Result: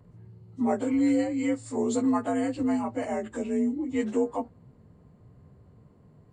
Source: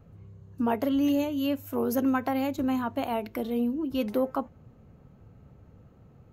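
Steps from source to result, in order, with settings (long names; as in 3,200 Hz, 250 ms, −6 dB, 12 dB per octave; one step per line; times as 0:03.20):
partials spread apart or drawn together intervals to 87%
level +1.5 dB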